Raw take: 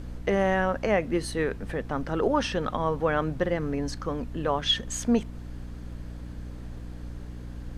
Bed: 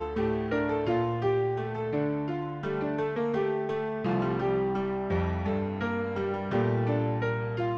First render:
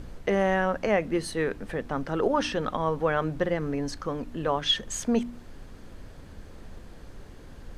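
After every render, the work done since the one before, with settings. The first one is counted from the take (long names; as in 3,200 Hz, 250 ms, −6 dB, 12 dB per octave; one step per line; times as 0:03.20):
hum removal 60 Hz, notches 5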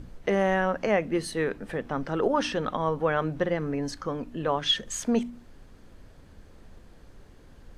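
noise reduction from a noise print 6 dB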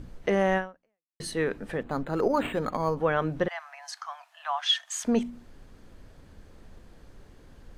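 0:00.57–0:01.20: fade out exponential
0:01.83–0:02.97: linearly interpolated sample-rate reduction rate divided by 8×
0:03.48–0:05.05: Butterworth high-pass 670 Hz 96 dB per octave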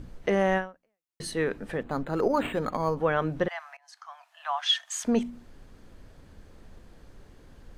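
0:03.77–0:04.49: fade in, from −23.5 dB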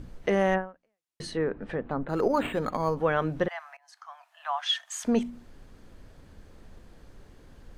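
0:00.54–0:02.09: treble cut that deepens with the level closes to 1,300 Hz, closed at −26 dBFS
0:03.46–0:05.03: parametric band 4,800 Hz −3.5 dB 2.2 octaves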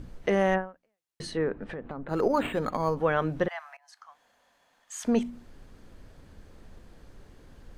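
0:01.63–0:02.11: downward compressor 5 to 1, threshold −33 dBFS
0:04.08–0:04.91: fill with room tone, crossfade 0.24 s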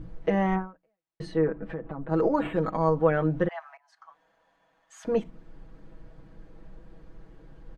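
low-pass filter 1,200 Hz 6 dB per octave
comb filter 6.2 ms, depth 87%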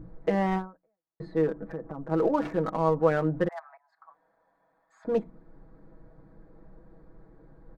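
adaptive Wiener filter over 15 samples
low-shelf EQ 120 Hz −6.5 dB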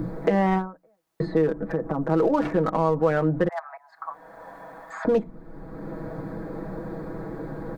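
in parallel at +1 dB: brickwall limiter −20.5 dBFS, peak gain reduction 11.5 dB
on the sum: multiband upward and downward compressor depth 70%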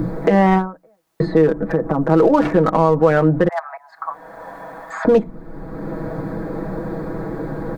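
level +8 dB
brickwall limiter −3 dBFS, peak gain reduction 3 dB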